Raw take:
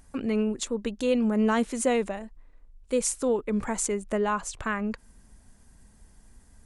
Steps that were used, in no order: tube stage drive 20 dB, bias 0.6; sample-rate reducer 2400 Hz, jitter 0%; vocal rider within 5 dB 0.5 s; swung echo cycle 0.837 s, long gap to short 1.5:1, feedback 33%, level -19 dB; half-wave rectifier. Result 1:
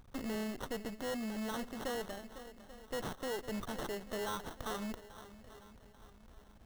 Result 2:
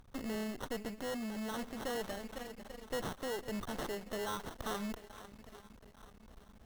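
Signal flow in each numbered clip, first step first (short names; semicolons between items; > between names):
half-wave rectifier > swung echo > vocal rider > tube stage > sample-rate reducer; sample-rate reducer > swung echo > half-wave rectifier > tube stage > vocal rider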